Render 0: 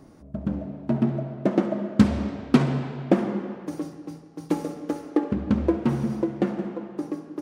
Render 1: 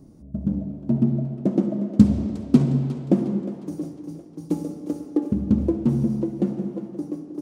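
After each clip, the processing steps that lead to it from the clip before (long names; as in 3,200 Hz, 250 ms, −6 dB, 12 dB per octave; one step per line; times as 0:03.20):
drawn EQ curve 220 Hz 0 dB, 1,700 Hz −19 dB, 7,300 Hz −5 dB
echo with a time of its own for lows and highs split 320 Hz, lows 101 ms, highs 358 ms, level −12 dB
level +3.5 dB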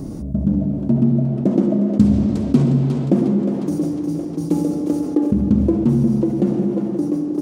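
on a send at −15 dB: convolution reverb RT60 0.95 s, pre-delay 34 ms
on the sum: envelope flattener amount 50%
level −1 dB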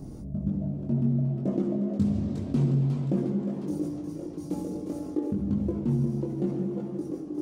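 multi-voice chorus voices 6, 0.49 Hz, delay 21 ms, depth 1.5 ms
level −8 dB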